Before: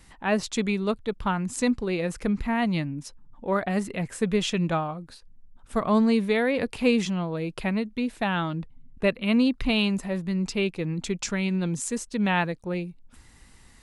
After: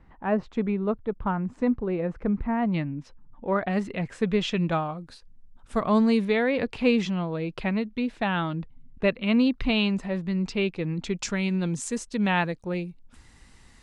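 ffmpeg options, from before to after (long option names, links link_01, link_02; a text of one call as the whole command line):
ffmpeg -i in.wav -af "asetnsamples=nb_out_samples=441:pad=0,asendcmd='2.74 lowpass f 2600;3.64 lowpass f 4300;4.72 lowpass f 8200;6.25 lowpass f 4600;11.17 lowpass f 8200',lowpass=1300" out.wav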